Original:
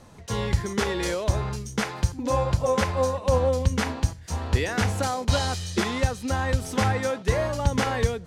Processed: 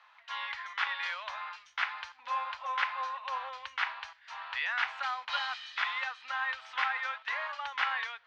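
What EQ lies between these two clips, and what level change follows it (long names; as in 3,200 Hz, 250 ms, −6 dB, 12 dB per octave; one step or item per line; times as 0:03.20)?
inverse Chebyshev high-pass filter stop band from 400 Hz, stop band 50 dB
low-pass filter 3,300 Hz 24 dB per octave
0.0 dB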